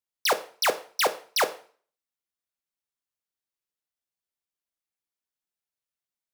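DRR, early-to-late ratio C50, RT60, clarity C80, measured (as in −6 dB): 9.5 dB, 16.0 dB, 0.45 s, 20.0 dB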